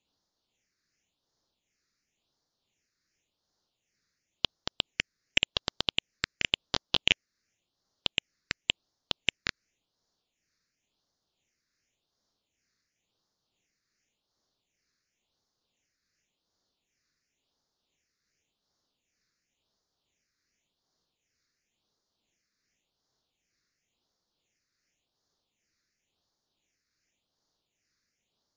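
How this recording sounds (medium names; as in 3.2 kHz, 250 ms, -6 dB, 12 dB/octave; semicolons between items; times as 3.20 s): phasing stages 6, 0.92 Hz, lowest notch 800–2500 Hz; tremolo triangle 2.3 Hz, depth 35%; MP3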